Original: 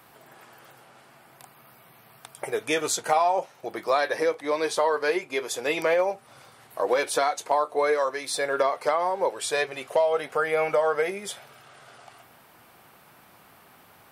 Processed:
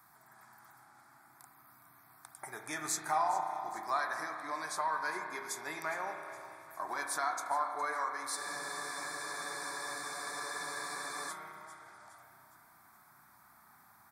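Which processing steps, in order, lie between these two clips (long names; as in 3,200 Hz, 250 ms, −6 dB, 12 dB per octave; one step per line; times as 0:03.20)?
low-shelf EQ 470 Hz −6.5 dB
phaser with its sweep stopped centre 1,200 Hz, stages 4
repeating echo 413 ms, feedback 49%, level −16 dB
spring reverb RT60 2.6 s, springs 32 ms, chirp 60 ms, DRR 4 dB
frozen spectrum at 0:08.38, 2.91 s
level −5.5 dB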